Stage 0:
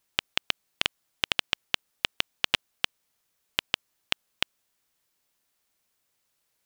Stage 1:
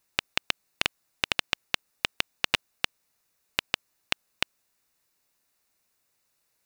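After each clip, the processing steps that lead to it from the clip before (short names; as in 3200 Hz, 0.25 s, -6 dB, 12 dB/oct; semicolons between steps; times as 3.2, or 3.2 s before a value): notch 3200 Hz, Q 7; gain +1.5 dB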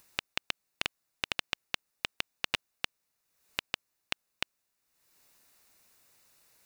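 upward compressor, threshold -44 dBFS; gain -6.5 dB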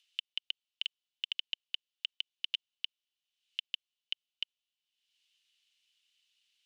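limiter -11.5 dBFS, peak gain reduction 4 dB; ladder band-pass 3200 Hz, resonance 85%; gain +3 dB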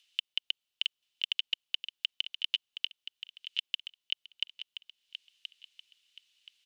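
feedback echo 1.026 s, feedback 31%, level -10.5 dB; gain +4.5 dB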